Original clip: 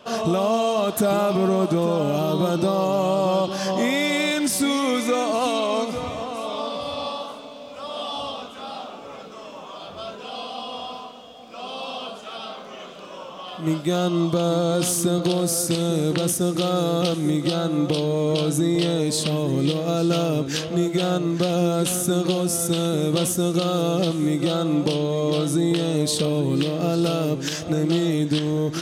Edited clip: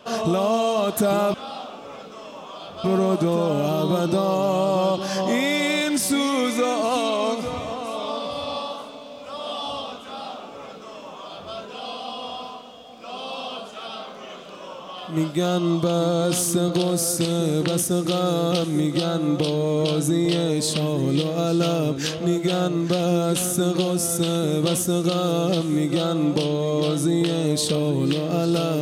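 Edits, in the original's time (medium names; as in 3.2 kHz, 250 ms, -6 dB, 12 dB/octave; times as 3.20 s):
8.54–10.04 s: copy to 1.34 s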